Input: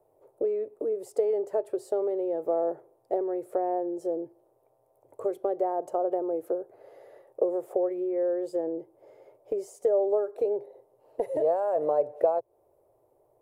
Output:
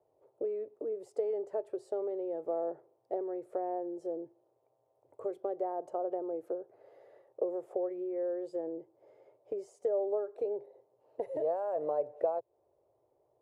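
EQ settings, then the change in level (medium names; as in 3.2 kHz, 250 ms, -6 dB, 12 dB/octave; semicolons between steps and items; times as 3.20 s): high-pass 45 Hz; distance through air 59 m; -7.0 dB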